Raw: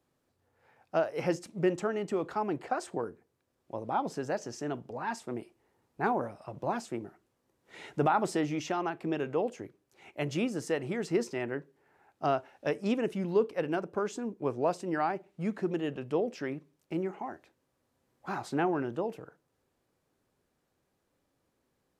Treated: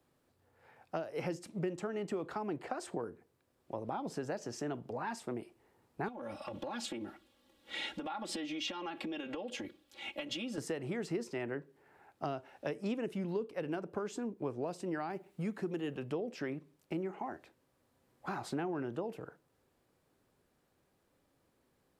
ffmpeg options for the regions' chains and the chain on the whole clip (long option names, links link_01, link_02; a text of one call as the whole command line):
ffmpeg -i in.wav -filter_complex "[0:a]asettb=1/sr,asplit=3[link_01][link_02][link_03];[link_01]atrim=end=6.084[link_04];[link_02]atrim=start=6.08:end=10.58,asetpts=PTS-STARTPTS,afade=type=in:duration=0.004:curve=qsin,afade=type=out:start_time=4.496:duration=0.004:curve=qsin,acompressor=threshold=-40dB:ratio=10:attack=3.2:release=140:knee=1:detection=peak,equalizer=frequency=3400:width_type=o:width=0.89:gain=13.5,aecho=1:1:3.6:0.97,atrim=end_sample=198450[link_05];[link_03]atrim=start=10.576[link_06];[link_04][link_05]acrossfade=duration=0.004:curve1=hsin:curve2=qsin[link_07];[link_07][link_06]acrossfade=duration=0.004:curve1=qsin:curve2=hsin,asettb=1/sr,asplit=3[link_08][link_09][link_10];[link_08]atrim=end=15.104[link_11];[link_09]atrim=start=15.1:end=16.03,asetpts=PTS-STARTPTS,afade=type=in:duration=0.004:curve=qsin,afade=type=out:start_time=0.926:duration=0.004:curve=qsin,highshelf=frequency=7800:gain=9,bandreject=frequency=620:width=10[link_12];[link_10]atrim=start=16.026[link_13];[link_11][link_12]acrossfade=duration=0.004:curve1=hsin:curve2=qsin[link_14];[link_14][link_13]acrossfade=duration=0.004:curve1=qsin:curve2=hsin,acrossover=split=400|3000[link_15][link_16][link_17];[link_16]acompressor=threshold=-33dB:ratio=6[link_18];[link_15][link_18][link_17]amix=inputs=3:normalize=0,equalizer=frequency=6200:width_type=o:width=0.44:gain=-3,acompressor=threshold=-40dB:ratio=2.5,volume=2.5dB" out.wav